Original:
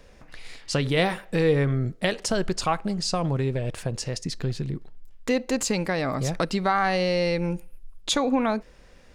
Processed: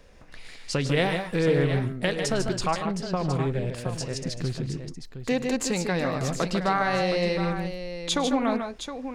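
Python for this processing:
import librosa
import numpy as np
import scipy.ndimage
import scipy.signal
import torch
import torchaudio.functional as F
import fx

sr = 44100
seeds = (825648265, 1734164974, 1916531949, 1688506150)

y = fx.lowpass(x, sr, hz=2700.0, slope=12, at=(2.72, 3.21))
y = fx.echo_multitap(y, sr, ms=(106, 147, 159, 716), db=(-19.5, -7.0, -12.5, -10.0))
y = fx.doppler_dist(y, sr, depth_ms=0.16)
y = F.gain(torch.from_numpy(y), -2.0).numpy()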